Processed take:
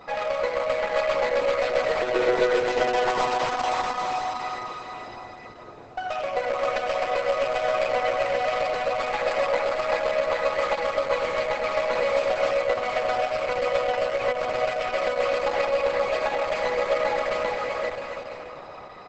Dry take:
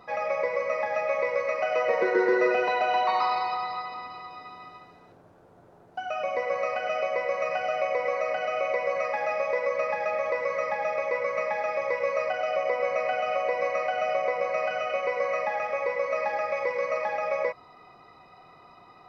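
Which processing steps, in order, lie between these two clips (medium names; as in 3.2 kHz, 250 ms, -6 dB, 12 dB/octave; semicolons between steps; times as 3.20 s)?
tracing distortion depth 0.15 ms; in parallel at +2 dB: compression 20:1, threshold -38 dBFS, peak gain reduction 20.5 dB; on the sum: saturation -14 dBFS, distortion -25 dB; 7.22–8.17 s: doubling 16 ms -12 dB; bouncing-ball echo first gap 390 ms, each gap 0.7×, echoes 5; on a send at -8 dB: reverberation RT60 4.1 s, pre-delay 58 ms; on the sum: Opus 10 kbps 48 kHz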